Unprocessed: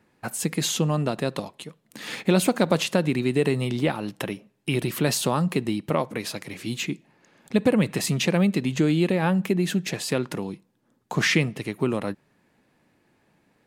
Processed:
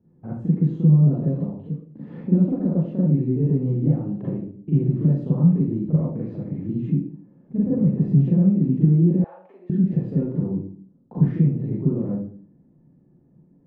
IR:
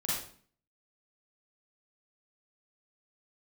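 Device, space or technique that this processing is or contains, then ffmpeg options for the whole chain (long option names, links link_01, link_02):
television next door: -filter_complex "[0:a]acompressor=threshold=-27dB:ratio=3,lowpass=290[link_01];[1:a]atrim=start_sample=2205[link_02];[link_01][link_02]afir=irnorm=-1:irlink=0,asettb=1/sr,asplit=3[link_03][link_04][link_05];[link_03]atrim=end=9.244[link_06];[link_04]atrim=start=9.24:end=9.7,asetpts=PTS-STARTPTS,afade=type=in:duration=0.004:curve=qsin,afade=type=out:start_time=0.456:duration=0.004:curve=qsin,highpass=frequency=650:width=0.5412,highpass=frequency=650:width=1.3066[link_07];[link_05]atrim=start=9.696[link_08];[link_06][link_07]acrossfade=duration=0.004:curve1=hsin:curve2=qsin[link_09];[link_09][link_08]acrossfade=duration=0.004:curve1=qsin:curve2=hsin,volume=4.5dB"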